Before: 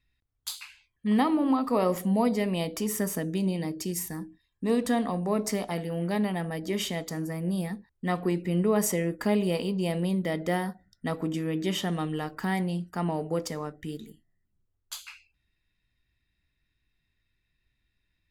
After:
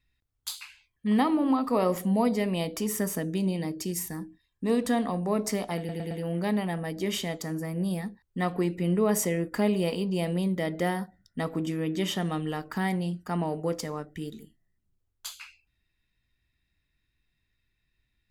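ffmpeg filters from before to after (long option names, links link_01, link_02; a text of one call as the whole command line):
ffmpeg -i in.wav -filter_complex "[0:a]asplit=4[link_01][link_02][link_03][link_04];[link_01]atrim=end=5.892[link_05];[link_02]atrim=start=5.778:end=5.892[link_06];[link_03]atrim=start=5.778:end=5.892[link_07];[link_04]atrim=start=5.778[link_08];[link_05][link_06]acrossfade=duration=0.004:curve1=hsin:curve2=hsin[link_09];[link_09][link_07]acrossfade=duration=0.004:curve1=hsin:curve2=hsin[link_10];[link_10][link_08]acrossfade=duration=0.004:curve1=hsin:curve2=hsin" out.wav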